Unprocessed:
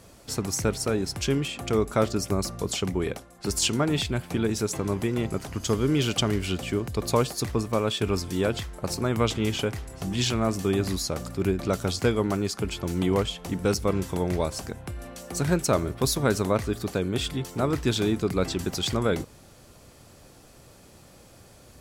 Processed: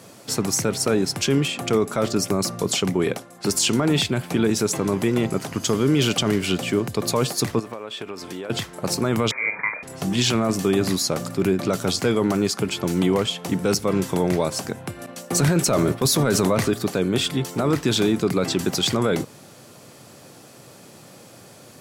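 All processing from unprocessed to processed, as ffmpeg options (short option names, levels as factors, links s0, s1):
-filter_complex "[0:a]asettb=1/sr,asplit=3[s0][s1][s2];[s0]atrim=end=7.594[s3];[s1]atrim=start=7.59:end=8.5,asetpts=PTS-STARTPTS,afade=t=in:d=0.004:c=qsin,afade=t=out:st=0.906:d=0.004:c=qsin,bass=f=250:g=-12,treble=f=4000:g=-8,acompressor=threshold=0.0178:ratio=16:attack=3.2:release=140:knee=1:detection=peak[s4];[s2]atrim=start=8.496[s5];[s3][s4]acrossfade=d=0.004:c1=hsin:c2=qsin[s6];[s6][s5]acrossfade=d=0.004:c1=qsin:c2=hsin,asettb=1/sr,asplit=3[s7][s8][s9];[s7]atrim=end=9.314[s10];[s8]atrim=start=9.31:end=9.83,asetpts=PTS-STARTPTS,afade=t=in:d=0.004:c=qsin,afade=t=out:st=0.516:d=0.004:c=qsin,lowshelf=f=370:g=-11,asplit=2[s11][s12];[s12]adelay=47,volume=0.335[s13];[s11][s13]amix=inputs=2:normalize=0,atrim=end_sample=22932,lowpass=f=2100:t=q:w=0.5098,lowpass=f=2100:t=q:w=0.6013,lowpass=f=2100:t=q:w=0.9,lowpass=f=2100:t=q:w=2.563,afreqshift=-2500[s14];[s9]atrim=start=9.826[s15];[s10][s14]acrossfade=d=0.004:c1=hsin:c2=qsin[s16];[s16][s15]acrossfade=d=0.004:c1=qsin:c2=hsin,asettb=1/sr,asplit=3[s17][s18][s19];[s17]atrim=end=15.064[s20];[s18]atrim=start=15.06:end=16.74,asetpts=PTS-STARTPTS,afade=t=in:d=0.004:c=qsin,afade=t=out:st=1.676:d=0.004:c=qsin,agate=range=0.0224:threshold=0.0178:ratio=3:release=100:detection=peak,acontrast=51[s21];[s19]atrim=start=16.736[s22];[s20][s21]acrossfade=d=0.004:c1=hsin:c2=qsin[s23];[s23][s22]acrossfade=d=0.004:c1=qsin:c2=hsin,highpass=f=120:w=0.5412,highpass=f=120:w=1.3066,alimiter=limit=0.133:level=0:latency=1:release=13,volume=2.24"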